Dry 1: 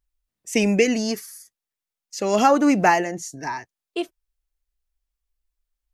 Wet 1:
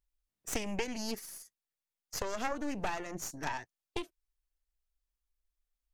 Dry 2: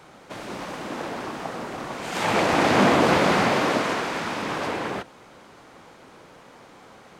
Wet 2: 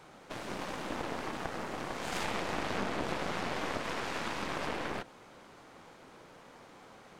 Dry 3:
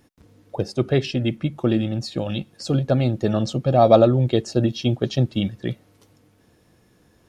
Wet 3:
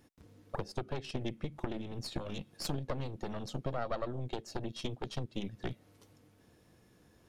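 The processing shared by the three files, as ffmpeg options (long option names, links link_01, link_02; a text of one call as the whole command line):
ffmpeg -i in.wav -af "acompressor=threshold=-28dB:ratio=8,aeval=exprs='0.168*(cos(1*acos(clip(val(0)/0.168,-1,1)))-cos(1*PI/2))+0.0668*(cos(4*acos(clip(val(0)/0.168,-1,1)))-cos(4*PI/2))':channel_layout=same,volume=-6dB" out.wav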